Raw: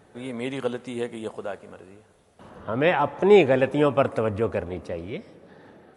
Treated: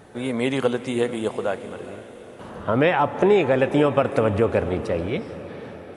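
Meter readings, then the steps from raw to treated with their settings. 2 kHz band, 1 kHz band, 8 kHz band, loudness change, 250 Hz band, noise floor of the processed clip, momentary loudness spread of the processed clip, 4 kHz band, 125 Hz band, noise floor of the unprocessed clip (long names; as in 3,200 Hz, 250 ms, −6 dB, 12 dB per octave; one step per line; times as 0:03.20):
+2.0 dB, +2.5 dB, can't be measured, +1.5 dB, +3.5 dB, −42 dBFS, 19 LU, +2.5 dB, +4.0 dB, −58 dBFS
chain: downward compressor 6 to 1, threshold −22 dBFS, peak gain reduction 11.5 dB
feedback delay with all-pass diffusion 453 ms, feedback 58%, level −14.5 dB
level +7.5 dB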